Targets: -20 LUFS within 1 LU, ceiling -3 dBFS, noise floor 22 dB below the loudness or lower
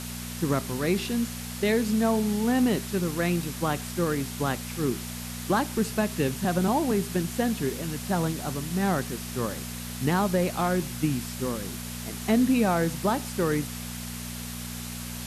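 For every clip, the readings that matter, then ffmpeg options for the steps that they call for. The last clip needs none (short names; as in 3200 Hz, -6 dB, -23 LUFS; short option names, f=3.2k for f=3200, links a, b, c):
hum 60 Hz; harmonics up to 240 Hz; hum level -35 dBFS; noise floor -36 dBFS; noise floor target -50 dBFS; loudness -27.5 LUFS; peak -10.5 dBFS; loudness target -20.0 LUFS
-> -af "bandreject=f=60:t=h:w=4,bandreject=f=120:t=h:w=4,bandreject=f=180:t=h:w=4,bandreject=f=240:t=h:w=4"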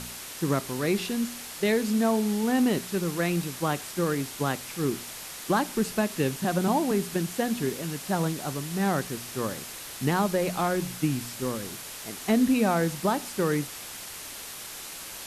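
hum none; noise floor -40 dBFS; noise floor target -50 dBFS
-> -af "afftdn=nr=10:nf=-40"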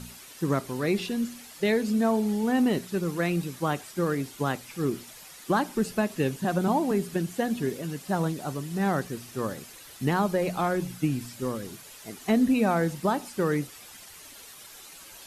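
noise floor -47 dBFS; noise floor target -50 dBFS
-> -af "afftdn=nr=6:nf=-47"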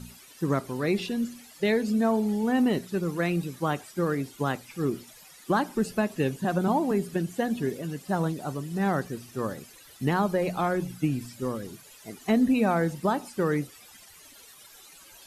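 noise floor -51 dBFS; loudness -28.0 LUFS; peak -11.5 dBFS; loudness target -20.0 LUFS
-> -af "volume=8dB"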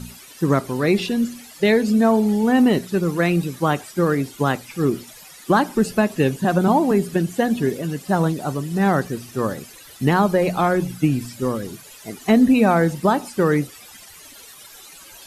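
loudness -20.0 LUFS; peak -3.5 dBFS; noise floor -43 dBFS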